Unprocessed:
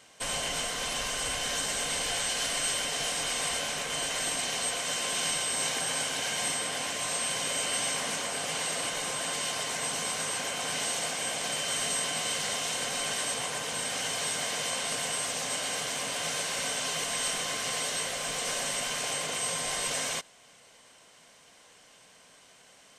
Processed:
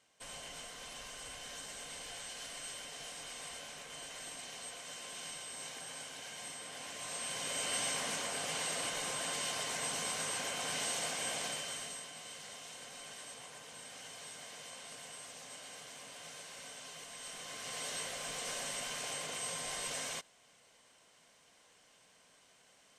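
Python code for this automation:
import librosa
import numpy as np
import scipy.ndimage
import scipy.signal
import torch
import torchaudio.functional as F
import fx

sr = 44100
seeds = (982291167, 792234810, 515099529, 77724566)

y = fx.gain(x, sr, db=fx.line((6.54, -15.5), (7.74, -5.5), (11.4, -5.5), (12.09, -17.5), (17.18, -17.5), (17.91, -8.5)))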